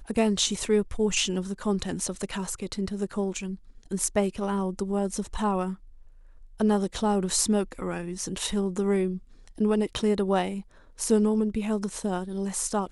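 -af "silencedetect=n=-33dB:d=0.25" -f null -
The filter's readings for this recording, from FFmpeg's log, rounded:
silence_start: 3.55
silence_end: 3.91 | silence_duration: 0.36
silence_start: 5.74
silence_end: 6.60 | silence_duration: 0.86
silence_start: 9.17
silence_end: 9.58 | silence_duration: 0.41
silence_start: 10.61
silence_end: 11.00 | silence_duration: 0.39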